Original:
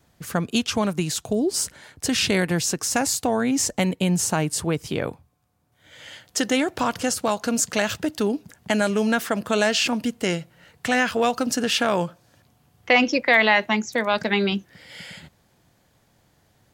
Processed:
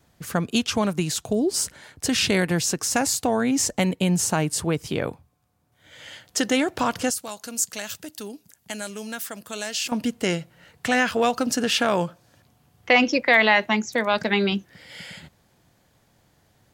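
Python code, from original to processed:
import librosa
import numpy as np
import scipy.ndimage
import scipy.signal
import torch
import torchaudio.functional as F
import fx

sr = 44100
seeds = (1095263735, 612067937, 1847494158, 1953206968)

y = fx.pre_emphasis(x, sr, coefficient=0.8, at=(7.1, 9.92))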